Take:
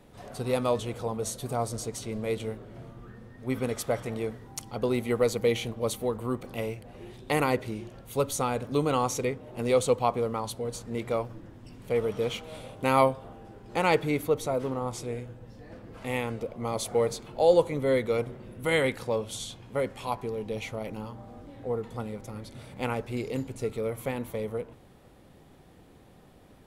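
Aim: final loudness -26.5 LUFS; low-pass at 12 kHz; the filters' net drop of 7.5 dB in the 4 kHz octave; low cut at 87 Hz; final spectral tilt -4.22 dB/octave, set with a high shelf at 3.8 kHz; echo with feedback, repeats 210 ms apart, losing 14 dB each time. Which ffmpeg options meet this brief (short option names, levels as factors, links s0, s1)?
-af "highpass=87,lowpass=12000,highshelf=f=3800:g=-8,equalizer=f=4000:t=o:g=-5,aecho=1:1:210|420:0.2|0.0399,volume=1.5"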